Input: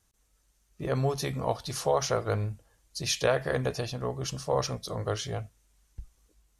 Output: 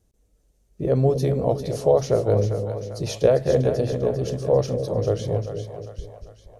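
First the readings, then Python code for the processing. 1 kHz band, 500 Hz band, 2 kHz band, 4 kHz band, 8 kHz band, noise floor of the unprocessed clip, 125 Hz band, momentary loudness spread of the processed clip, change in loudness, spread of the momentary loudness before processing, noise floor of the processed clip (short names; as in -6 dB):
+1.0 dB, +10.0 dB, -5.5 dB, -4.0 dB, -3.5 dB, -70 dBFS, +9.0 dB, 13 LU, +8.0 dB, 10 LU, -64 dBFS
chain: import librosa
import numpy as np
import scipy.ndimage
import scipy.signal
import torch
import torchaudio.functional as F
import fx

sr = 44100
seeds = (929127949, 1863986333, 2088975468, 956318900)

y = fx.low_shelf_res(x, sr, hz=760.0, db=12.0, q=1.5)
y = fx.echo_split(y, sr, split_hz=570.0, low_ms=236, high_ms=397, feedback_pct=52, wet_db=-7.5)
y = y * 10.0 ** (-4.5 / 20.0)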